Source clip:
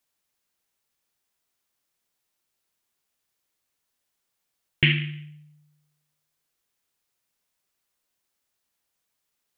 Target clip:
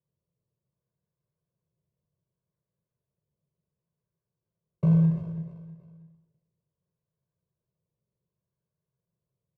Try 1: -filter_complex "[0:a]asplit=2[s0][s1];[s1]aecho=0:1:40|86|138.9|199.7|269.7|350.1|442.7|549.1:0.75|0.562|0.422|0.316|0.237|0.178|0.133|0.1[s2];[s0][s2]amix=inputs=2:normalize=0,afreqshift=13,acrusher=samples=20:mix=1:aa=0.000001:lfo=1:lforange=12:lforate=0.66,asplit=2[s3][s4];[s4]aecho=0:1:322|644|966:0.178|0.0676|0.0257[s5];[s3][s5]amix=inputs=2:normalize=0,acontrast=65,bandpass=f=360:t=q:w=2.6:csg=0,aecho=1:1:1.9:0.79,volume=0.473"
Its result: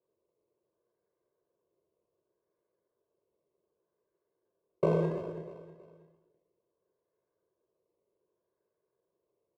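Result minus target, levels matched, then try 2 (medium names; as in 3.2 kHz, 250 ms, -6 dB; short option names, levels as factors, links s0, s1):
500 Hz band +19.5 dB
-filter_complex "[0:a]asplit=2[s0][s1];[s1]aecho=0:1:40|86|138.9|199.7|269.7|350.1|442.7|549.1:0.75|0.562|0.422|0.316|0.237|0.178|0.133|0.1[s2];[s0][s2]amix=inputs=2:normalize=0,afreqshift=13,acrusher=samples=20:mix=1:aa=0.000001:lfo=1:lforange=12:lforate=0.66,asplit=2[s3][s4];[s4]aecho=0:1:322|644|966:0.178|0.0676|0.0257[s5];[s3][s5]amix=inputs=2:normalize=0,acontrast=65,bandpass=f=150:t=q:w=2.6:csg=0,aecho=1:1:1.9:0.79,volume=0.473"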